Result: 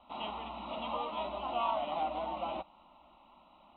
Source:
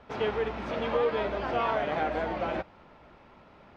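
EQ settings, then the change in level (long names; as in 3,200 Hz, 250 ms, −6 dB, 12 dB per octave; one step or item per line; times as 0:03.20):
Chebyshev low-pass with heavy ripple 4,000 Hz, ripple 9 dB
high-shelf EQ 2,800 Hz +10.5 dB
phaser with its sweep stopped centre 440 Hz, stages 6
0.0 dB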